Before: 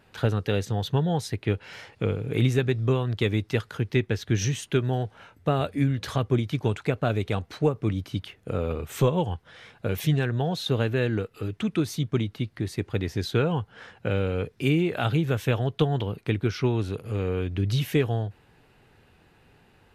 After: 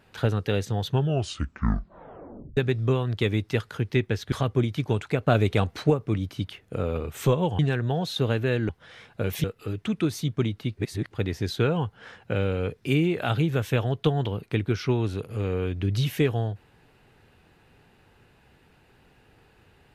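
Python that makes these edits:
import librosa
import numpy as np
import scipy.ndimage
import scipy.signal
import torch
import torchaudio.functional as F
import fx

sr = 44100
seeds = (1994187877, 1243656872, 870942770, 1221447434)

y = fx.edit(x, sr, fx.tape_stop(start_s=0.9, length_s=1.67),
    fx.cut(start_s=4.32, length_s=1.75),
    fx.clip_gain(start_s=7.02, length_s=0.63, db=4.5),
    fx.move(start_s=9.34, length_s=0.75, to_s=11.19),
    fx.reverse_span(start_s=12.52, length_s=0.34), tone=tone)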